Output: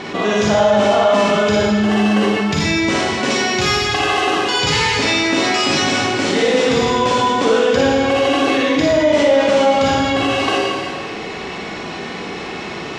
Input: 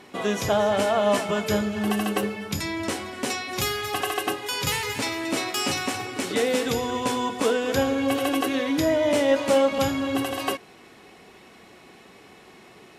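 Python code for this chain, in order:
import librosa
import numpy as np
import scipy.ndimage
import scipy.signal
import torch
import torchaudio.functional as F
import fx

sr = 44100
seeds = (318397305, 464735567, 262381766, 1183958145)

y = scipy.signal.sosfilt(scipy.signal.butter(4, 6400.0, 'lowpass', fs=sr, output='sos'), x)
y = fx.rev_schroeder(y, sr, rt60_s=1.1, comb_ms=38, drr_db=-5.0)
y = fx.env_flatten(y, sr, amount_pct=50)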